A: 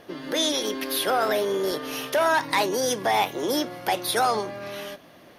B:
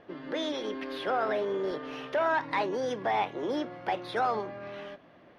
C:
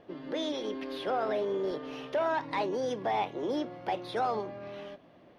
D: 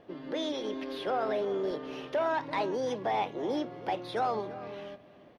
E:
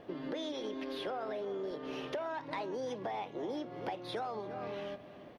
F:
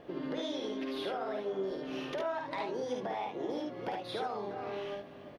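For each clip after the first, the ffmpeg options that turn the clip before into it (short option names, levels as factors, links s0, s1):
-af "lowpass=2400,volume=0.531"
-af "equalizer=f=1600:w=1.1:g=-6.5"
-filter_complex "[0:a]asplit=2[s0][s1];[s1]adelay=338.2,volume=0.158,highshelf=f=4000:g=-7.61[s2];[s0][s2]amix=inputs=2:normalize=0"
-af "acompressor=threshold=0.01:ratio=6,volume=1.5"
-af "aecho=1:1:52|72:0.596|0.596"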